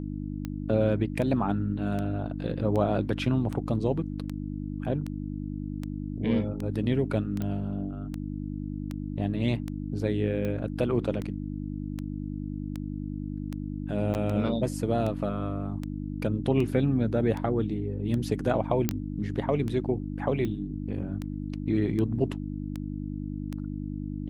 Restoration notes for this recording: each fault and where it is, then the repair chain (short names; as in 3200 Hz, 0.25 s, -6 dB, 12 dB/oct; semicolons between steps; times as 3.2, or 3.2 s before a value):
hum 50 Hz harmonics 6 -34 dBFS
tick 78 rpm -21 dBFS
7.42 pop -20 dBFS
14.14–14.15 gap 9.4 ms
18.89 pop -9 dBFS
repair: de-click; de-hum 50 Hz, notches 6; interpolate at 14.14, 9.4 ms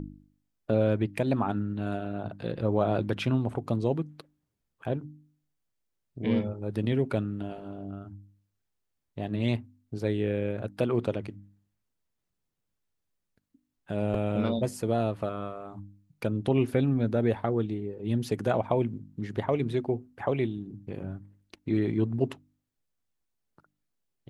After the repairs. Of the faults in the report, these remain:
none